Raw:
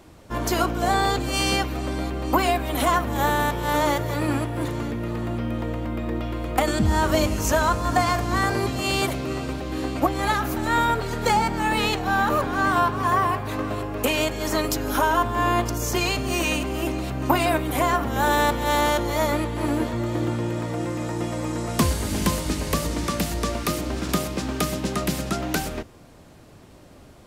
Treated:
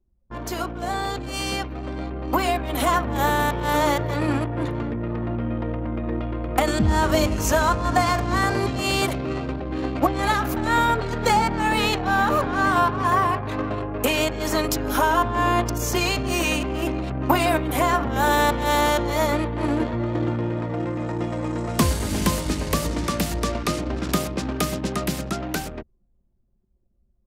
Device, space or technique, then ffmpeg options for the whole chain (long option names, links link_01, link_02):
voice memo with heavy noise removal: -filter_complex "[0:a]asettb=1/sr,asplit=3[link_01][link_02][link_03];[link_01]atrim=end=23.524[link_04];[link_02]atrim=start=23.52:end=23.95,asetpts=PTS-STARTPTS,afade=type=in:duration=0.004:curve=qsin,afade=type=out:start_time=0.426:duration=0.004:curve=qsin,lowpass=9400[link_05];[link_03]atrim=start=23.946[link_06];[link_04][link_05]acrossfade=duration=0.004:curve1=hsin:curve2=qsin[link_07];[link_07][link_06]acrossfade=duration=0.004:curve1=qsin:curve2=hsin,anlmdn=15.8,dynaudnorm=framelen=360:gausssize=13:maxgain=11.5dB,volume=-6dB"